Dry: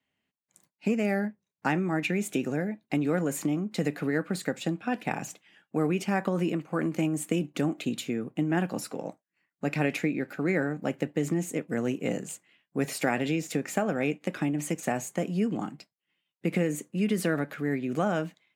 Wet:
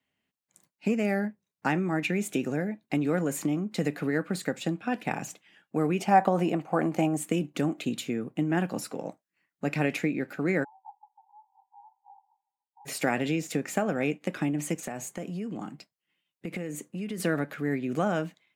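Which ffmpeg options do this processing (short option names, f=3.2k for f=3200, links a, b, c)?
-filter_complex "[0:a]asettb=1/sr,asplit=3[a][b][c];[a]atrim=end=6.004[d];[b]atrim=start=6:end=7.17,asetpts=PTS-STARTPTS,afade=t=in:d=0.004:c=qsin,afade=t=out:st=1.166:d=0.004:c=qsin,equalizer=f=750:w=2.2:g=13.5[e];[c]atrim=start=7.166[f];[d][e]acrossfade=d=0.004:c1=hsin:c2=qsin[g];[g][f]acrossfade=d=0.004:c1=qsin:c2=hsin,asplit=3[h][i][j];[h]afade=t=out:st=10.63:d=0.02[k];[i]asuperpass=centerf=870:order=20:qfactor=4,afade=t=in:st=10.63:d=0.02,afade=t=out:st=12.85:d=0.02[l];[j]afade=t=in:st=12.85:d=0.02[m];[k][l][m]amix=inputs=3:normalize=0,asettb=1/sr,asplit=3[n][o][p];[n]atrim=end=14.834[q];[o]atrim=start=14.83:end=17.2,asetpts=PTS-STARTPTS,afade=t=in:d=0.004:c=qsin,afade=t=out:st=2.366:d=0.004:c=qsin,acompressor=threshold=-33dB:ratio=3:attack=3.2:release=140:knee=1:detection=peak[r];[p]atrim=start=17.196[s];[q][r]acrossfade=d=0.004:c1=hsin:c2=qsin[t];[t][s]acrossfade=d=0.004:c1=qsin:c2=hsin"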